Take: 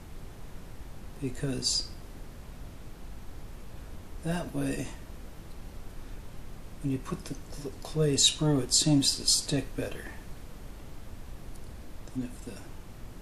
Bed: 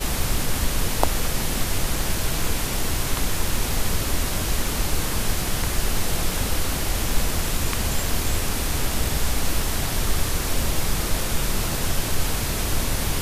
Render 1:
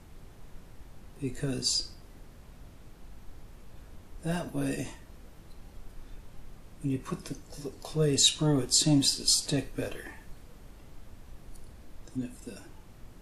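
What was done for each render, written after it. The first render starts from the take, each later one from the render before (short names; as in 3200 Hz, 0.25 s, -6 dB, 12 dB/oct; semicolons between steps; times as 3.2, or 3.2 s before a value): noise print and reduce 6 dB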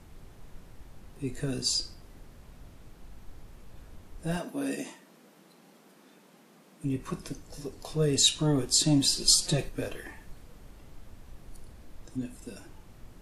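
4.37–6.84 brick-wall FIR high-pass 160 Hz; 9.09–9.69 comb 5.6 ms, depth 97%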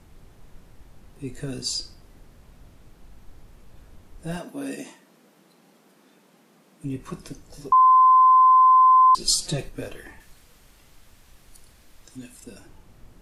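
7.72–9.15 bleep 1030 Hz -11 dBFS; 10.2–12.44 tilt shelf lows -6.5 dB, about 1100 Hz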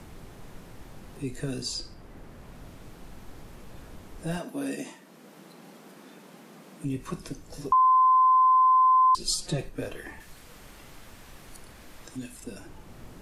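three-band squash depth 40%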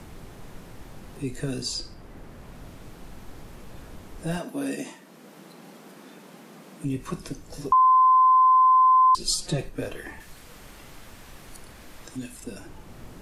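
gain +2.5 dB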